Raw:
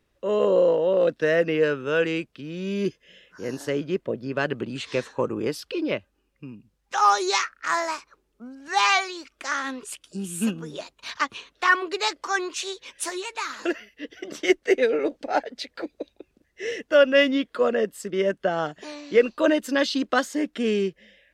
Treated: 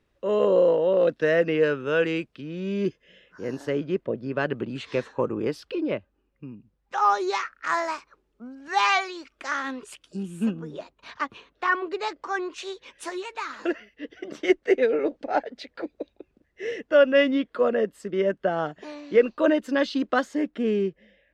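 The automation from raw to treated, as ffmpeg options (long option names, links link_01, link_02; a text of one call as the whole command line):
ffmpeg -i in.wav -af "asetnsamples=nb_out_samples=441:pad=0,asendcmd='2.44 lowpass f 2300;5.75 lowpass f 1300;7.45 lowpass f 2900;10.23 lowpass f 1100;12.58 lowpass f 1900;20.48 lowpass f 1100',lowpass=frequency=4200:poles=1" out.wav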